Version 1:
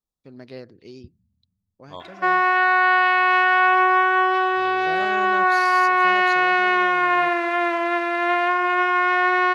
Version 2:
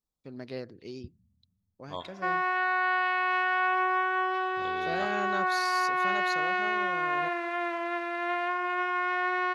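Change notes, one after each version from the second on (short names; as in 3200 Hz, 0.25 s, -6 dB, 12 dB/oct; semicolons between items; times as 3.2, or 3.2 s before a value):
background -10.0 dB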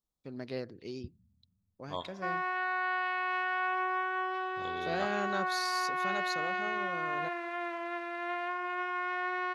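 background -5.5 dB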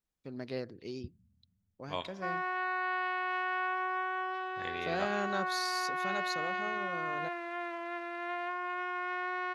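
second voice: remove Chebyshev band-stop 1300–3300 Hz, order 5; background: send -10.0 dB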